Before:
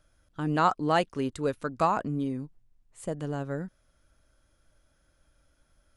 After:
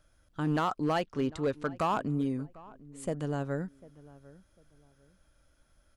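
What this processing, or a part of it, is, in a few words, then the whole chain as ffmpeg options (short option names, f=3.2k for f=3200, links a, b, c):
limiter into clipper: -filter_complex "[0:a]asettb=1/sr,asplit=3[a][b][c];[a]atrim=end=1.004[d];[b]atrim=start=1:end=1.71,asetpts=PTS-STARTPTS,afade=t=in:d=0.004:c=qsin,afade=t=out:st=0.706:d=0.004:c=qsin,lowpass=5.9k[e];[c]atrim=start=1.706[f];[d][e]acrossfade=d=0.004:c1=hsin:c2=qsin[g];[g][f]acrossfade=d=0.004:c1=qsin:c2=hsin,alimiter=limit=-18dB:level=0:latency=1:release=109,asoftclip=type=hard:threshold=-22.5dB,asplit=2[h][i];[i]adelay=748,lowpass=f=1.4k:p=1,volume=-20dB,asplit=2[j][k];[k]adelay=748,lowpass=f=1.4k:p=1,volume=0.29[l];[h][j][l]amix=inputs=3:normalize=0"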